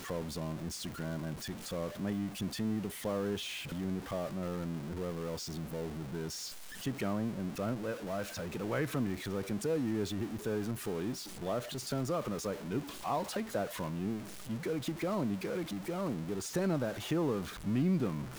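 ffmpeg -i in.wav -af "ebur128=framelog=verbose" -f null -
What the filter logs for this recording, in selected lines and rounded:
Integrated loudness:
  I:         -36.5 LUFS
  Threshold: -46.5 LUFS
Loudness range:
  LRA:         3.1 LU
  Threshold: -56.7 LUFS
  LRA low:   -38.3 LUFS
  LRA high:  -35.2 LUFS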